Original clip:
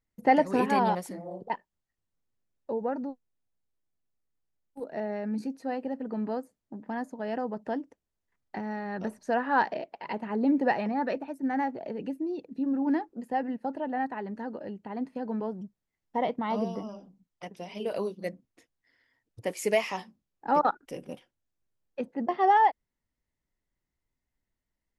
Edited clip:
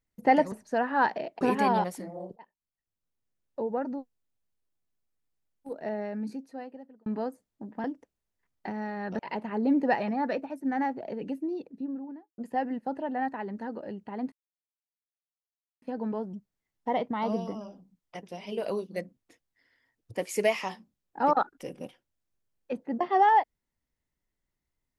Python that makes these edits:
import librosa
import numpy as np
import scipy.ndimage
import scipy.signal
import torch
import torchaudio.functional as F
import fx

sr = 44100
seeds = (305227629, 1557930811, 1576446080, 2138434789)

y = fx.studio_fade_out(x, sr, start_s=12.19, length_s=0.97)
y = fx.edit(y, sr, fx.fade_in_from(start_s=1.47, length_s=1.23, floor_db=-23.5),
    fx.fade_out_span(start_s=5.05, length_s=1.12),
    fx.cut(start_s=6.95, length_s=0.78),
    fx.move(start_s=9.08, length_s=0.89, to_s=0.52),
    fx.insert_silence(at_s=15.1, length_s=1.5), tone=tone)